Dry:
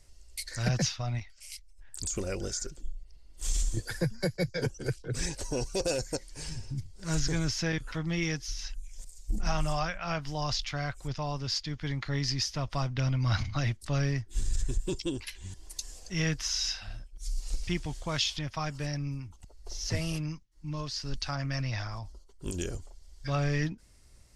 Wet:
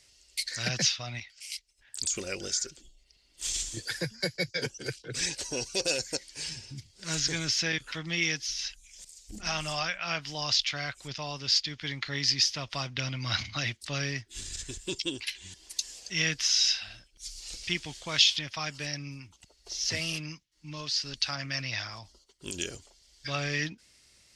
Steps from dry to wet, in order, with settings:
meter weighting curve D
level −2.5 dB

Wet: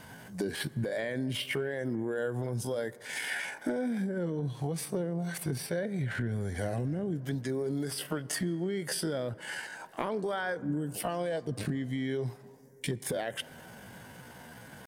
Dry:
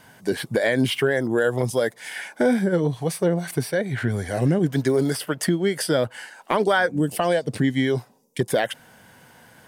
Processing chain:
low-shelf EQ 470 Hz +4.5 dB
brickwall limiter −16 dBFS, peak gain reduction 9.5 dB
downward compressor 6 to 1, threshold −30 dBFS, peak gain reduction 10 dB
tempo change 0.65×
on a send: convolution reverb RT60 3.3 s, pre-delay 8 ms, DRR 18 dB

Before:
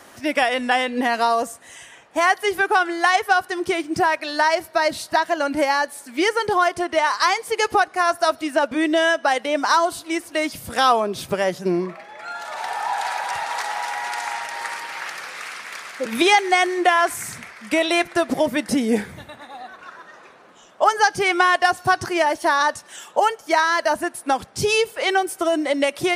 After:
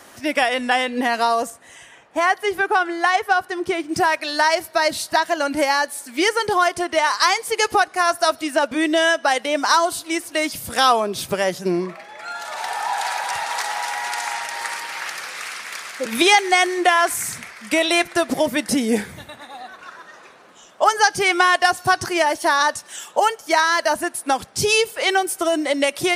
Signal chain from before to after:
high-shelf EQ 3,200 Hz +3 dB, from 0:01.50 −4 dB, from 0:03.89 +6.5 dB

